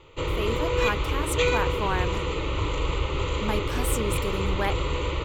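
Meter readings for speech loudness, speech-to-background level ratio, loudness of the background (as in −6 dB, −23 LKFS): −32.0 LKFS, −4.5 dB, −27.5 LKFS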